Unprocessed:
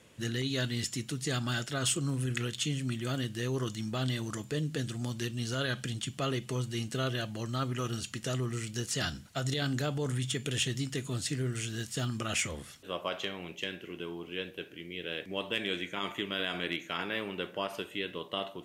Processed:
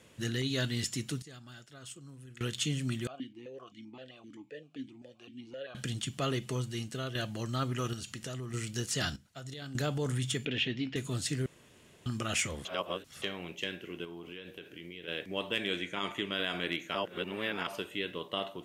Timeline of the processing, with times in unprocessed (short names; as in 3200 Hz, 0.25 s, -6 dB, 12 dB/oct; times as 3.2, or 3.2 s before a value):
1.22–2.41 gate -26 dBFS, range -18 dB
3.07–5.75 vowel sequencer 7.7 Hz
6.46–7.15 fade out, to -7 dB
7.93–8.54 compressor 3:1, threshold -38 dBFS
9.16–9.75 gain -11.5 dB
10.45–10.96 speaker cabinet 110–3700 Hz, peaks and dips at 140 Hz -7 dB, 250 Hz +5 dB, 1200 Hz -7 dB, 2400 Hz +6 dB
11.46–12.06 room tone
12.65–13.22 reverse
14.04–15.08 compressor 12:1, threshold -40 dBFS
15.8–16.4 LPF 12000 Hz 24 dB/oct
16.95–17.67 reverse